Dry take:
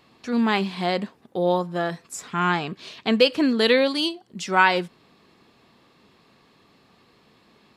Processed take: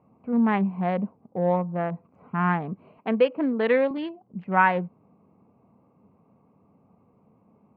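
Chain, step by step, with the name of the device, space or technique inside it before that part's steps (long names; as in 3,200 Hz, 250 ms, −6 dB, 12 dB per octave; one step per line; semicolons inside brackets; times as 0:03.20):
adaptive Wiener filter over 25 samples
bass cabinet (loudspeaker in its box 80–2,000 Hz, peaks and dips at 96 Hz +5 dB, 190 Hz +4 dB, 360 Hz −8 dB, 1,400 Hz −4 dB)
0:02.98–0:03.91: high-pass filter 270 Hz 12 dB per octave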